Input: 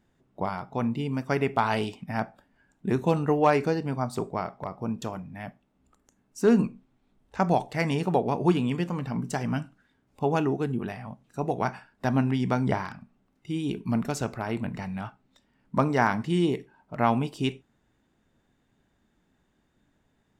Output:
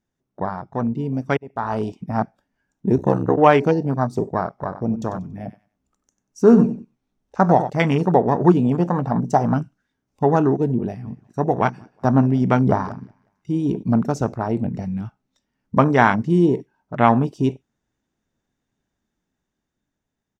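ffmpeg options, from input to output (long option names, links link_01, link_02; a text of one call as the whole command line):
ffmpeg -i in.wav -filter_complex "[0:a]asplit=3[link_01][link_02][link_03];[link_01]afade=type=out:start_time=2.96:duration=0.02[link_04];[link_02]aeval=exprs='val(0)*sin(2*PI*32*n/s)':channel_layout=same,afade=type=in:start_time=2.96:duration=0.02,afade=type=out:start_time=3.36:duration=0.02[link_05];[link_03]afade=type=in:start_time=3.36:duration=0.02[link_06];[link_04][link_05][link_06]amix=inputs=3:normalize=0,asettb=1/sr,asplit=3[link_07][link_08][link_09];[link_07]atrim=end=4.494[link_10];[link_08]atrim=start=4.49:end=7.7,asetpts=PTS-STARTPTS,afade=type=in:duration=0.004:curve=qsin,afade=type=out:start_time=3.206:duration=0.004:curve=qsin,aecho=1:1:94|188|282:0.282|0.0761|0.0205,atrim=end_sample=141561[link_11];[link_09]atrim=start=7.696[link_12];[link_10][link_11]acrossfade=duration=0.004:curve1=hsin:curve2=qsin[link_13];[link_13][link_12]acrossfade=duration=0.004:curve1=qsin:curve2=hsin,asettb=1/sr,asplit=3[link_14][link_15][link_16];[link_14]atrim=end=8.654[link_17];[link_15]atrim=start=8.65:end=9.54,asetpts=PTS-STARTPTS,afade=type=in:duration=0.004:curve=qsin,afade=type=out:start_time=0.886:duration=0.004:curve=qsin,equalizer=frequency=740:width_type=o:width=0.9:gain=9[link_18];[link_16]atrim=start=9.536[link_19];[link_17][link_18]acrossfade=duration=0.004:curve1=hsin:curve2=qsin[link_20];[link_20][link_19]acrossfade=duration=0.004:curve1=qsin:curve2=hsin,asplit=3[link_21][link_22][link_23];[link_21]afade=type=out:start_time=11.04:duration=0.02[link_24];[link_22]asplit=2[link_25][link_26];[link_26]adelay=182,lowpass=frequency=3800:poles=1,volume=-17dB,asplit=2[link_27][link_28];[link_28]adelay=182,lowpass=frequency=3800:poles=1,volume=0.41,asplit=2[link_29][link_30];[link_30]adelay=182,lowpass=frequency=3800:poles=1,volume=0.41[link_31];[link_25][link_27][link_29][link_31]amix=inputs=4:normalize=0,afade=type=in:start_time=11.04:duration=0.02,afade=type=out:start_time=13.82:duration=0.02[link_32];[link_23]afade=type=in:start_time=13.82:duration=0.02[link_33];[link_24][link_32][link_33]amix=inputs=3:normalize=0,asplit=2[link_34][link_35];[link_34]atrim=end=1.37,asetpts=PTS-STARTPTS,afade=type=out:start_time=1.366:duration=0.004:curve=hsin[link_36];[link_35]atrim=start=1.37,asetpts=PTS-STARTPTS,afade=type=in:duration=0.57[link_37];[link_36][link_37]concat=n=2:v=0:a=1,afwtdn=0.0224,equalizer=frequency=5900:width_type=o:width=0.45:gain=10.5,dynaudnorm=framelen=100:gausssize=31:maxgain=4dB,volume=4.5dB" out.wav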